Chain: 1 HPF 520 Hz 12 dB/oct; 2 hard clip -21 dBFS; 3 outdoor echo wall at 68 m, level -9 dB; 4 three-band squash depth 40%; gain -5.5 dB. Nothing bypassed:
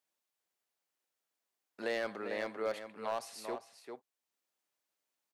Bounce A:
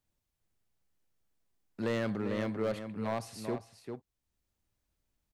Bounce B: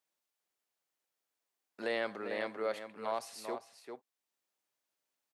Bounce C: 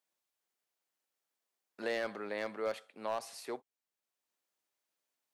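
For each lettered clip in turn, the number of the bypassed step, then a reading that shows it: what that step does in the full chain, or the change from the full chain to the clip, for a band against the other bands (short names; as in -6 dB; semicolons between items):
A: 1, 125 Hz band +21.5 dB; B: 2, distortion -16 dB; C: 3, momentary loudness spread change -7 LU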